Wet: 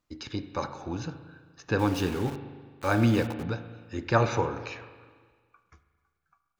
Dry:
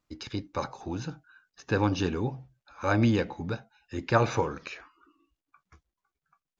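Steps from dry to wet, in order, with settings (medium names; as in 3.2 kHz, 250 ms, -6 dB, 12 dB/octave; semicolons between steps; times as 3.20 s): 1.79–3.43 s: small samples zeroed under -36 dBFS; spring tank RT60 1.6 s, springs 35/42 ms, chirp 30 ms, DRR 10 dB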